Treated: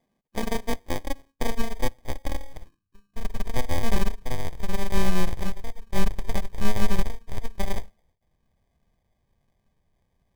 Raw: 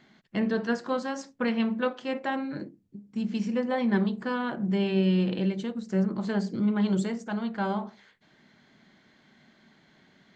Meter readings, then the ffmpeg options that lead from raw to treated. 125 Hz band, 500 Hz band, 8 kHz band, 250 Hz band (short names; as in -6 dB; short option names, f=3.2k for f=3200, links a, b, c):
-0.5 dB, -3.5 dB, n/a, -7.5 dB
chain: -af "acrusher=samples=32:mix=1:aa=0.000001,aeval=exprs='0.188*(cos(1*acos(clip(val(0)/0.188,-1,1)))-cos(1*PI/2))+0.0473*(cos(4*acos(clip(val(0)/0.188,-1,1)))-cos(4*PI/2))+0.0335*(cos(7*acos(clip(val(0)/0.188,-1,1)))-cos(7*PI/2))':c=same,asubboost=boost=10.5:cutoff=75,volume=-3dB"